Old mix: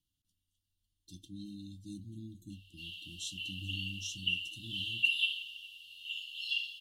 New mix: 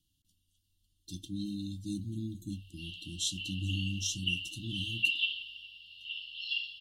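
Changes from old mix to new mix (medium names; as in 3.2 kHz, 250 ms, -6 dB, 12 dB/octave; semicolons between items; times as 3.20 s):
speech +8.5 dB; background: add brick-wall FIR low-pass 5.6 kHz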